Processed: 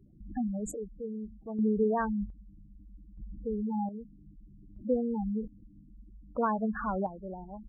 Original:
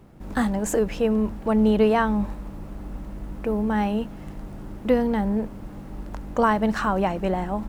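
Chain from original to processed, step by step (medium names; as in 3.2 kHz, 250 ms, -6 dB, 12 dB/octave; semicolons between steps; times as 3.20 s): spectral gate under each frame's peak -10 dB strong; square tremolo 0.63 Hz, depth 60%, duty 45%; trim -8 dB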